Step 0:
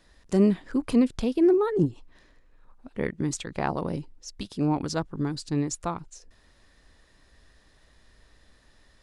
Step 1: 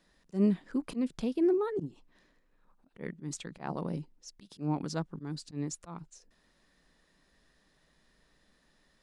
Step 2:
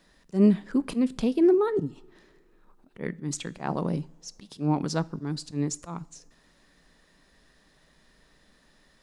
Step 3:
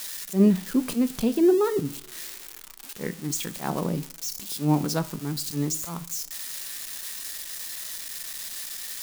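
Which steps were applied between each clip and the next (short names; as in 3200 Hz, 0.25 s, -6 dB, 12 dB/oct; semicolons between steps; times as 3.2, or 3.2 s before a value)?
resonant low shelf 130 Hz -6 dB, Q 3; auto swell 0.129 s; gain -7.5 dB
two-slope reverb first 0.44 s, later 2.9 s, from -21 dB, DRR 17.5 dB; gain +7 dB
switching spikes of -26.5 dBFS; flange 0.29 Hz, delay 9 ms, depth 5.7 ms, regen +82%; gain +5.5 dB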